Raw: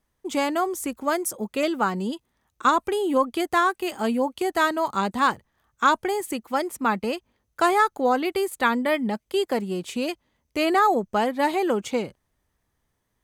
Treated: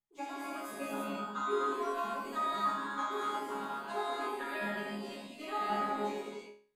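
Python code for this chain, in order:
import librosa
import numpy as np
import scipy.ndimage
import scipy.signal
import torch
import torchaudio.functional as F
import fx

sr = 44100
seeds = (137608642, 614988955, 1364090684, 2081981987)

y = fx.high_shelf(x, sr, hz=11000.0, db=-5.5)
y = fx.transient(y, sr, attack_db=7, sustain_db=-2)
y = fx.resonator_bank(y, sr, root=49, chord='fifth', decay_s=0.79)
y = fx.stretch_vocoder_free(y, sr, factor=0.51)
y = fx.rev_gated(y, sr, seeds[0], gate_ms=380, shape='flat', drr_db=-7.0)
y = y * librosa.db_to_amplitude(-2.0)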